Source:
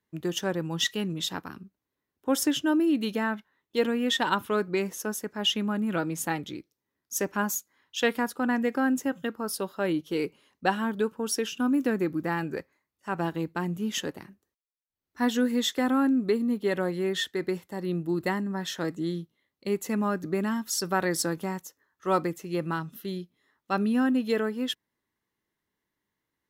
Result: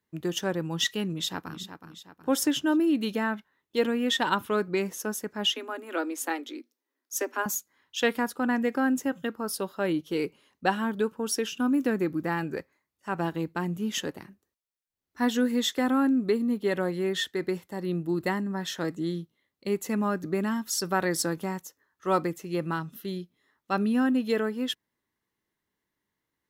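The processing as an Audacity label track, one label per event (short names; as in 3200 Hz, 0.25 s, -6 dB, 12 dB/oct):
1.090000	1.600000	echo throw 0.37 s, feedback 45%, level -9.5 dB
5.470000	7.460000	Chebyshev high-pass 240 Hz, order 10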